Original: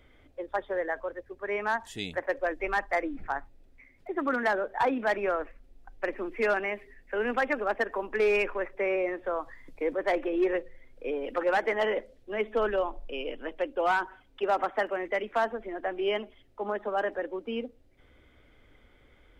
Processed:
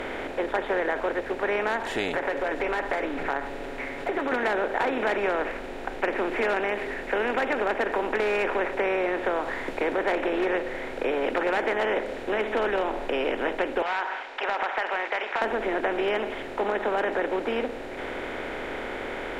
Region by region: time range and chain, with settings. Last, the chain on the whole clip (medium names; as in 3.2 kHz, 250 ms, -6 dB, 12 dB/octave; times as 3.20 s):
2.08–4.32 s: comb 7.1 ms, depth 88% + compression 4:1, threshold -37 dBFS
13.82–15.42 s: elliptic band-pass 840–5300 Hz, stop band 60 dB + compression 3:1, threshold -33 dBFS
whole clip: spectral levelling over time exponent 0.4; compression 3:1, threshold -23 dBFS